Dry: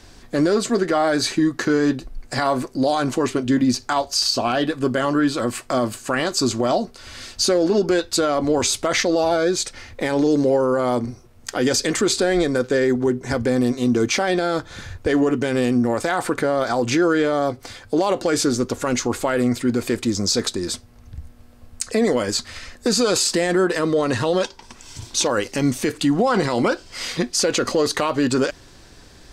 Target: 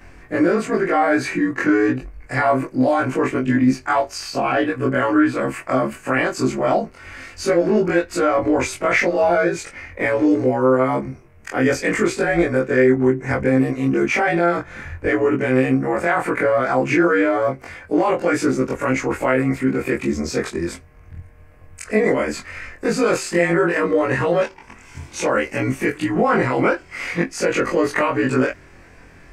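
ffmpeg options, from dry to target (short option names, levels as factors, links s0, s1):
-af "afftfilt=real='re':imag='-im':win_size=2048:overlap=0.75,highshelf=f=2900:t=q:w=3:g=-8.5,volume=1.88"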